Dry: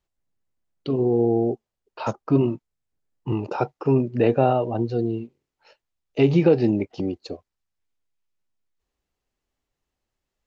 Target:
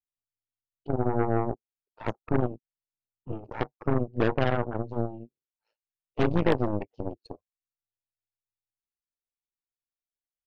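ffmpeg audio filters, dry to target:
-af "afftdn=nr=16:nf=-30,tremolo=f=110:d=0.667,aeval=exprs='0.473*(cos(1*acos(clip(val(0)/0.473,-1,1)))-cos(1*PI/2))+0.0211*(cos(7*acos(clip(val(0)/0.473,-1,1)))-cos(7*PI/2))+0.0944*(cos(8*acos(clip(val(0)/0.473,-1,1)))-cos(8*PI/2))':c=same,volume=-5dB"

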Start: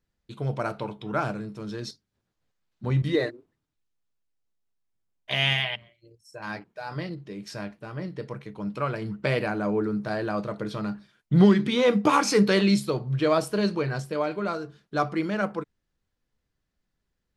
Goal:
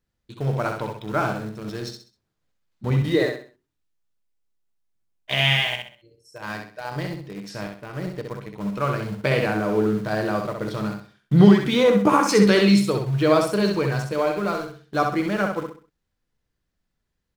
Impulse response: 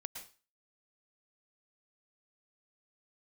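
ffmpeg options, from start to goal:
-filter_complex "[0:a]asettb=1/sr,asplit=3[a][b][c];[a]atrim=end=11.834[d];[b]atrim=start=11.83:end=12.29,asetpts=PTS-STARTPTS,afade=t=in:d=0.004:c=qsin,afade=t=out:st=0.456:d=0.004:c=qsin,equalizer=f=3.9k:w=0.9:g=-12.5[e];[c]atrim=start=12.286[f];[d][e]acrossfade=d=0.004:c1=hsin:c2=qsin[g];[g][f]acrossfade=d=0.004:c1=qsin:c2=hsin,asplit=2[h][i];[i]aeval=exprs='val(0)*gte(abs(val(0)),0.0282)':c=same,volume=-7dB[j];[h][j]amix=inputs=2:normalize=0,aecho=1:1:65|130|195|260:0.562|0.186|0.0612|0.0202"

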